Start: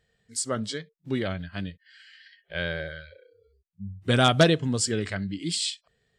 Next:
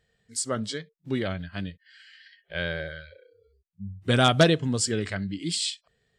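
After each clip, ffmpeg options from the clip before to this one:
ffmpeg -i in.wav -af anull out.wav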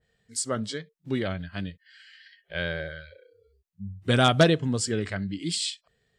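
ffmpeg -i in.wav -af "adynamicequalizer=threshold=0.01:dfrequency=2300:dqfactor=0.7:tfrequency=2300:tqfactor=0.7:attack=5:release=100:ratio=0.375:range=2:mode=cutabove:tftype=highshelf" out.wav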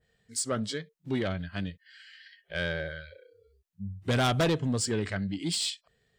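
ffmpeg -i in.wav -af "asoftclip=type=tanh:threshold=-21dB" out.wav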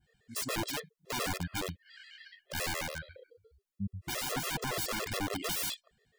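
ffmpeg -i in.wav -af "aeval=exprs='(mod(26.6*val(0)+1,2)-1)/26.6':channel_layout=same,afftfilt=real='re*gt(sin(2*PI*7.1*pts/sr)*(1-2*mod(floor(b*sr/1024/350),2)),0)':imag='im*gt(sin(2*PI*7.1*pts/sr)*(1-2*mod(floor(b*sr/1024/350),2)),0)':win_size=1024:overlap=0.75,volume=2.5dB" out.wav

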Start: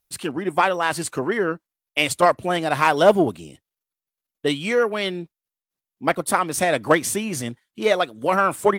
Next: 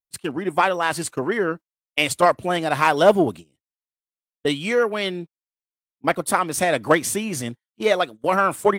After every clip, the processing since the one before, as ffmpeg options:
ffmpeg -i in.wav -af "agate=range=-22dB:threshold=-32dB:ratio=16:detection=peak" out.wav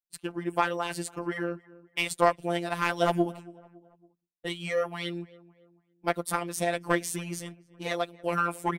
ffmpeg -i in.wav -filter_complex "[0:a]aeval=exprs='0.841*(cos(1*acos(clip(val(0)/0.841,-1,1)))-cos(1*PI/2))+0.075*(cos(3*acos(clip(val(0)/0.841,-1,1)))-cos(3*PI/2))':channel_layout=same,afftfilt=real='hypot(re,im)*cos(PI*b)':imag='0':win_size=1024:overlap=0.75,asplit=2[link_01][link_02];[link_02]adelay=279,lowpass=frequency=1600:poles=1,volume=-21dB,asplit=2[link_03][link_04];[link_04]adelay=279,lowpass=frequency=1600:poles=1,volume=0.47,asplit=2[link_05][link_06];[link_06]adelay=279,lowpass=frequency=1600:poles=1,volume=0.47[link_07];[link_01][link_03][link_05][link_07]amix=inputs=4:normalize=0,volume=-3dB" out.wav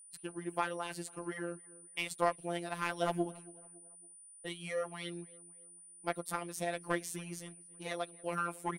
ffmpeg -i in.wav -af "aeval=exprs='val(0)+0.00562*sin(2*PI*9400*n/s)':channel_layout=same,volume=-8.5dB" out.wav

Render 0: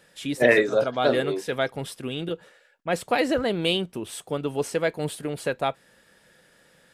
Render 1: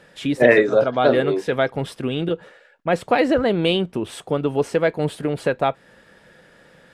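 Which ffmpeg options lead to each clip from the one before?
ffmpeg -i in.wav -filter_complex "[0:a]lowpass=frequency=2100:poles=1,asplit=2[link_01][link_02];[link_02]acompressor=threshold=-31dB:ratio=6,volume=-1.5dB[link_03];[link_01][link_03]amix=inputs=2:normalize=0,volume=4dB" out.wav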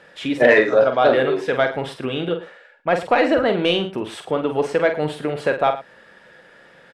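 ffmpeg -i in.wav -filter_complex "[0:a]asplit=2[link_01][link_02];[link_02]highpass=frequency=720:poles=1,volume=10dB,asoftclip=type=tanh:threshold=-1dB[link_03];[link_01][link_03]amix=inputs=2:normalize=0,lowpass=frequency=2700:poles=1,volume=-6dB,asplit=2[link_04][link_05];[link_05]aecho=0:1:46|109:0.422|0.158[link_06];[link_04][link_06]amix=inputs=2:normalize=0,volume=-1dB" out.wav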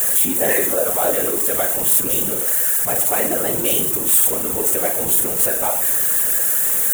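ffmpeg -i in.wav -af "aeval=exprs='val(0)+0.5*0.106*sgn(val(0))':channel_layout=same,afftfilt=real='hypot(re,im)*cos(2*PI*random(0))':imag='hypot(re,im)*sin(2*PI*random(1))':win_size=512:overlap=0.75,aexciter=amount=10.2:drive=9.2:freq=7200,volume=-2dB" out.wav

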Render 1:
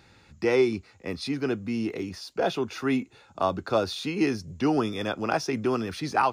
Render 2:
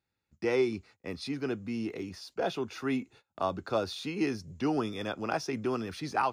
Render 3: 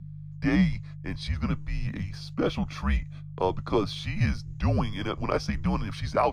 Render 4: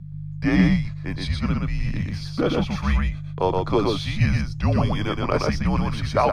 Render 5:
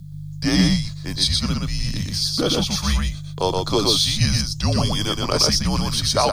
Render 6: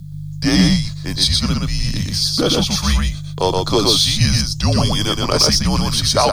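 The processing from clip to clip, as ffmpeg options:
ffmpeg -i in.wav -af "agate=range=-24dB:threshold=-48dB:ratio=16:detection=peak,volume=-5.5dB" out.wav
ffmpeg -i in.wav -af "highshelf=frequency=7400:gain=-9.5,aeval=exprs='val(0)+0.00631*(sin(2*PI*50*n/s)+sin(2*PI*2*50*n/s)/2+sin(2*PI*3*50*n/s)/3+sin(2*PI*4*50*n/s)/4+sin(2*PI*5*50*n/s)/5)':channel_layout=same,afreqshift=-200,volume=5dB" out.wav
ffmpeg -i in.wav -af "aecho=1:1:121:0.708,volume=4dB" out.wav
ffmpeg -i in.wav -af "aexciter=amount=7.5:drive=6.2:freq=3400" out.wav
ffmpeg -i in.wav -af "asoftclip=type=tanh:threshold=-6dB,volume=4.5dB" out.wav

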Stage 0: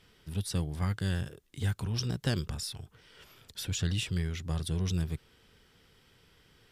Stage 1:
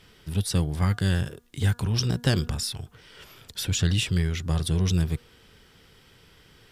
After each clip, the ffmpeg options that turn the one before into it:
ffmpeg -i in.wav -af "bandreject=frequency=239.7:width_type=h:width=4,bandreject=frequency=479.4:width_type=h:width=4,bandreject=frequency=719.1:width_type=h:width=4,bandreject=frequency=958.8:width_type=h:width=4,bandreject=frequency=1198.5:width_type=h:width=4,bandreject=frequency=1438.2:width_type=h:width=4,bandreject=frequency=1677.9:width_type=h:width=4,volume=7.5dB" out.wav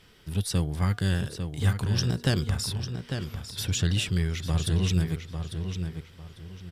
ffmpeg -i in.wav -filter_complex "[0:a]asplit=2[link_01][link_02];[link_02]adelay=849,lowpass=frequency=4900:poles=1,volume=-7dB,asplit=2[link_03][link_04];[link_04]adelay=849,lowpass=frequency=4900:poles=1,volume=0.29,asplit=2[link_05][link_06];[link_06]adelay=849,lowpass=frequency=4900:poles=1,volume=0.29,asplit=2[link_07][link_08];[link_08]adelay=849,lowpass=frequency=4900:poles=1,volume=0.29[link_09];[link_01][link_03][link_05][link_07][link_09]amix=inputs=5:normalize=0,volume=-2dB" out.wav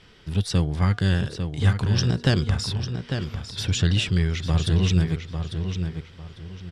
ffmpeg -i in.wav -af "lowpass=5900,volume=4.5dB" out.wav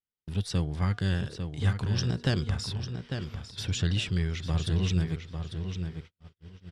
ffmpeg -i in.wav -af "agate=range=-43dB:threshold=-36dB:ratio=16:detection=peak,volume=-6.5dB" out.wav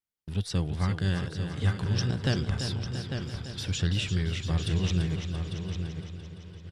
ffmpeg -i in.wav -af "aecho=1:1:340|680|1020|1360|1700|2040|2380:0.376|0.222|0.131|0.0772|0.0455|0.0269|0.0159" out.wav

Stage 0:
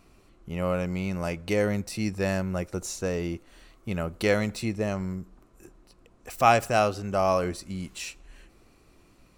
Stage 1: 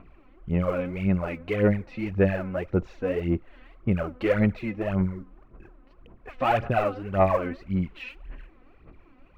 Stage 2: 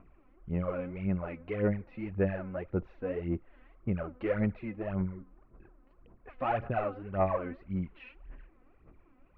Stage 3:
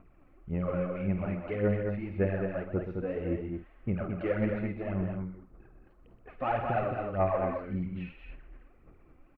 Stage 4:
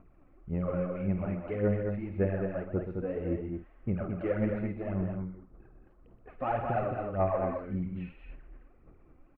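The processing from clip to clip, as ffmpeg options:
ffmpeg -i in.wav -af "asoftclip=type=tanh:threshold=-20dB,lowpass=frequency=2600:width=0.5412,lowpass=frequency=2600:width=1.3066,aphaser=in_gain=1:out_gain=1:delay=4:decay=0.69:speed=1.8:type=sinusoidal" out.wav
ffmpeg -i in.wav -af "lowpass=2200,volume=-7.5dB" out.wav
ffmpeg -i in.wav -filter_complex "[0:a]bandreject=frequency=1000:width=15,asplit=2[link_01][link_02];[link_02]adelay=50,volume=-11dB[link_03];[link_01][link_03]amix=inputs=2:normalize=0,asplit=2[link_04][link_05];[link_05]aecho=0:1:125.4|215.7:0.355|0.562[link_06];[link_04][link_06]amix=inputs=2:normalize=0" out.wav
ffmpeg -i in.wav -af "highshelf=frequency=2600:gain=-11" out.wav

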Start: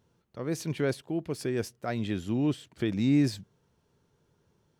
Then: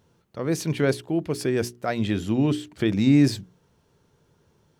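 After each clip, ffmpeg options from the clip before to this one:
ffmpeg -i in.wav -af "bandreject=frequency=60:width_type=h:width=6,bandreject=frequency=120:width_type=h:width=6,bandreject=frequency=180:width_type=h:width=6,bandreject=frequency=240:width_type=h:width=6,bandreject=frequency=300:width_type=h:width=6,bandreject=frequency=360:width_type=h:width=6,bandreject=frequency=420:width_type=h:width=6,volume=7dB" out.wav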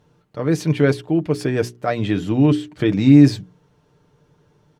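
ffmpeg -i in.wav -af "aemphasis=mode=reproduction:type=cd,aecho=1:1:6.7:0.49,volume=4dB" out.wav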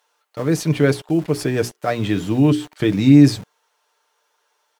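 ffmpeg -i in.wav -filter_complex "[0:a]highshelf=frequency=6700:gain=10,acrossover=split=650|3100[link_01][link_02][link_03];[link_01]aeval=exprs='val(0)*gte(abs(val(0)),0.0178)':channel_layout=same[link_04];[link_04][link_02][link_03]amix=inputs=3:normalize=0" out.wav

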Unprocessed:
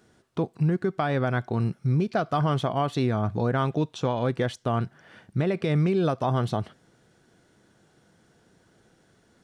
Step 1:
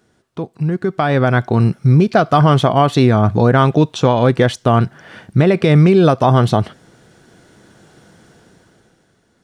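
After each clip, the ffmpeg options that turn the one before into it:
ffmpeg -i in.wav -af "dynaudnorm=framelen=110:gausssize=17:maxgain=13dB,volume=1.5dB" out.wav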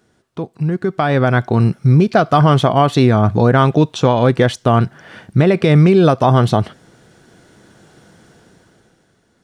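ffmpeg -i in.wav -af anull out.wav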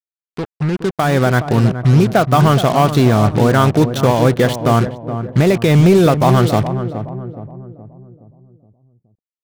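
ffmpeg -i in.wav -filter_complex "[0:a]acrusher=bits=3:mix=0:aa=0.5,asoftclip=type=hard:threshold=-5.5dB,asplit=2[link_01][link_02];[link_02]adelay=420,lowpass=frequency=850:poles=1,volume=-8.5dB,asplit=2[link_03][link_04];[link_04]adelay=420,lowpass=frequency=850:poles=1,volume=0.49,asplit=2[link_05][link_06];[link_06]adelay=420,lowpass=frequency=850:poles=1,volume=0.49,asplit=2[link_07][link_08];[link_08]adelay=420,lowpass=frequency=850:poles=1,volume=0.49,asplit=2[link_09][link_10];[link_10]adelay=420,lowpass=frequency=850:poles=1,volume=0.49,asplit=2[link_11][link_12];[link_12]adelay=420,lowpass=frequency=850:poles=1,volume=0.49[link_13];[link_01][link_03][link_05][link_07][link_09][link_11][link_13]amix=inputs=7:normalize=0" out.wav

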